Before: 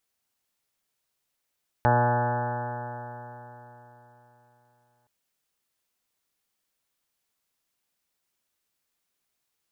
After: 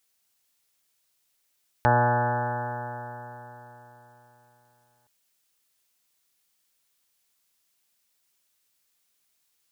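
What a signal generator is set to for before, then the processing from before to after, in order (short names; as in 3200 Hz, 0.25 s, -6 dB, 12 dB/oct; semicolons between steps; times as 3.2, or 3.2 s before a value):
stretched partials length 3.22 s, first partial 120 Hz, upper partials -8/-12/-8.5/-3/-8/1.5/-11/-13.5/-15/-17/-10/-14.5/-15 dB, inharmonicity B 0.00046, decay 3.77 s, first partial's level -22 dB
high shelf 2100 Hz +8.5 dB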